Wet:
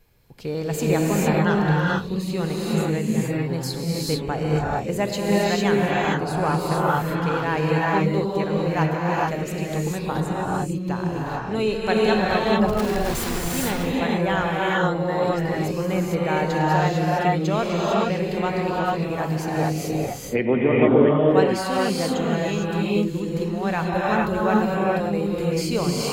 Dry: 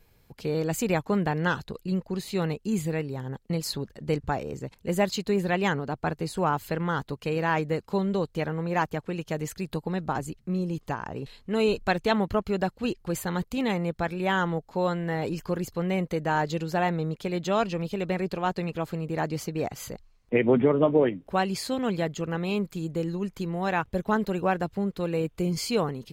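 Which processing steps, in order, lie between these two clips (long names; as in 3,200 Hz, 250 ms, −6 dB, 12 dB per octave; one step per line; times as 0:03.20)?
0:12.68–0:13.48: sign of each sample alone
reverb whose tail is shaped and stops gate 480 ms rising, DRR −4.5 dB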